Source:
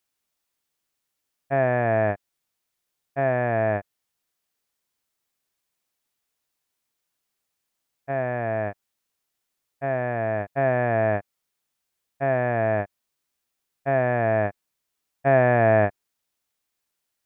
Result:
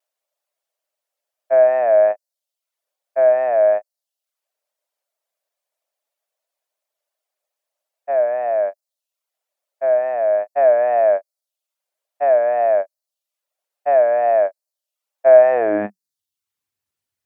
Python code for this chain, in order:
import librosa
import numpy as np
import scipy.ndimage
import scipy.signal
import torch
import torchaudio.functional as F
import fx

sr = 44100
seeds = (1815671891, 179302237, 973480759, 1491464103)

y = fx.dereverb_blind(x, sr, rt60_s=0.53)
y = fx.vibrato(y, sr, rate_hz=2.4, depth_cents=84.0)
y = fx.filter_sweep_highpass(y, sr, from_hz=600.0, to_hz=92.0, start_s=15.48, end_s=16.23, q=6.5)
y = F.gain(torch.from_numpy(y), -3.0).numpy()